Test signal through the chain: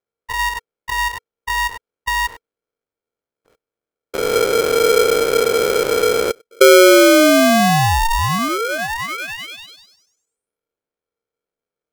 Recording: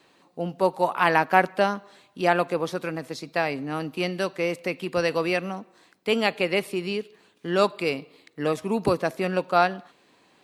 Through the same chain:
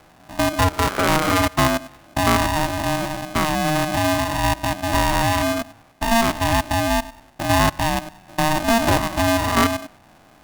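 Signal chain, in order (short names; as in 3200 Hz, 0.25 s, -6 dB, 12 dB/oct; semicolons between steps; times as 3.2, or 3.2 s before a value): stepped spectrum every 0.1 s; low-pass opened by the level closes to 2000 Hz, open at -22 dBFS; tilt -4 dB/oct; in parallel at +2 dB: compressor, threshold -29 dBFS; on the sum: low-pass opened by the level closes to 2100 Hz, open at -12.5 dBFS; polarity switched at an audio rate 460 Hz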